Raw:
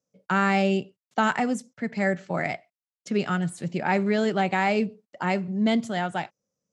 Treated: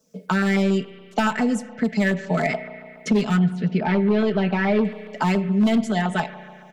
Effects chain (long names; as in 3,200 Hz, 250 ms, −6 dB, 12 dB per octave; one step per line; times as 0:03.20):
comb filter 4.6 ms, depth 79%
automatic gain control gain up to 8.5 dB
hard clipping −10 dBFS, distortion −14 dB
spring reverb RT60 1.2 s, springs 33 ms, chirp 70 ms, DRR 12.5 dB
auto-filter notch saw down 7.1 Hz 660–2,400 Hz
0:03.39–0:04.85: high-frequency loss of the air 280 metres
multiband upward and downward compressor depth 70%
level −3 dB